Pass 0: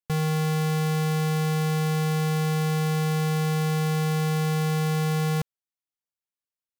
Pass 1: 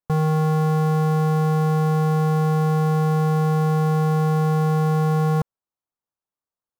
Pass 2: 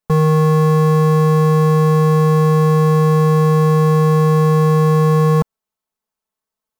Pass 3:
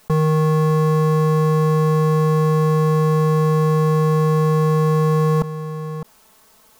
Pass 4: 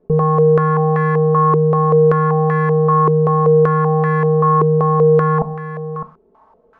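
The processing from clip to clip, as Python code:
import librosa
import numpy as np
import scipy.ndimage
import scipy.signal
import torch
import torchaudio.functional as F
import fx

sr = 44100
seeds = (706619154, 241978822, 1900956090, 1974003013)

y1 = fx.high_shelf_res(x, sr, hz=1600.0, db=-10.5, q=1.5)
y1 = F.gain(torch.from_numpy(y1), 5.0).numpy()
y2 = y1 + 0.87 * np.pad(y1, (int(4.6 * sr / 1000.0), 0))[:len(y1)]
y2 = F.gain(torch.from_numpy(y2), 5.0).numpy()
y3 = y2 + 10.0 ** (-22.5 / 20.0) * np.pad(y2, (int(607 * sr / 1000.0), 0))[:len(y2)]
y3 = fx.env_flatten(y3, sr, amount_pct=50)
y3 = F.gain(torch.from_numpy(y3), -4.0).numpy()
y4 = fx.rev_gated(y3, sr, seeds[0], gate_ms=150, shape='falling', drr_db=8.5)
y4 = fx.filter_held_lowpass(y4, sr, hz=5.2, low_hz=400.0, high_hz=1800.0)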